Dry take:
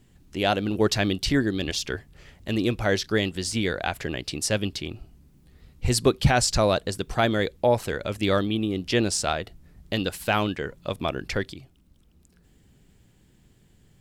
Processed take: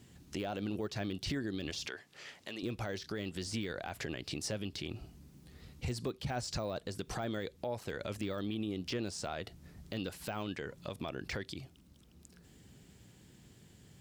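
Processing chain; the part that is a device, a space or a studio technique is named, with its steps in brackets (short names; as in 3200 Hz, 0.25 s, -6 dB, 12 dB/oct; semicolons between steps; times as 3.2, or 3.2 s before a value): broadcast voice chain (HPF 72 Hz 12 dB/oct; de-esser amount 90%; compressor 4:1, threshold -34 dBFS, peak gain reduction 16.5 dB; bell 5500 Hz +4 dB 1.2 oct; limiter -28.5 dBFS, peak gain reduction 8.5 dB); 1.88–2.63 weighting filter A; gain +1 dB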